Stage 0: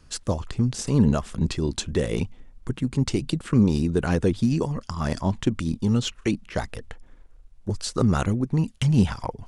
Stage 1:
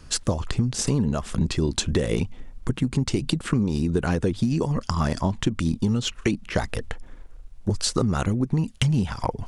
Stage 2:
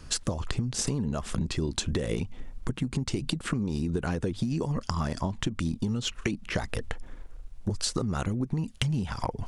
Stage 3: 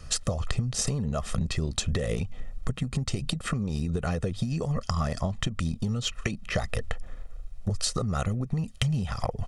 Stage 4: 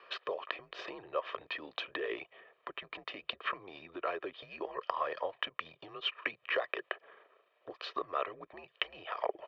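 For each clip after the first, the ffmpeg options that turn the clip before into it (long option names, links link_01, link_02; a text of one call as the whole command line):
ffmpeg -i in.wav -af "acompressor=threshold=-26dB:ratio=12,volume=7.5dB" out.wav
ffmpeg -i in.wav -af "acompressor=threshold=-26dB:ratio=4" out.wav
ffmpeg -i in.wav -af "aecho=1:1:1.6:0.6" out.wav
ffmpeg -i in.wav -af "highpass=frequency=560:width_type=q:width=0.5412,highpass=frequency=560:width_type=q:width=1.307,lowpass=frequency=3300:width_type=q:width=0.5176,lowpass=frequency=3300:width_type=q:width=0.7071,lowpass=frequency=3300:width_type=q:width=1.932,afreqshift=-90" out.wav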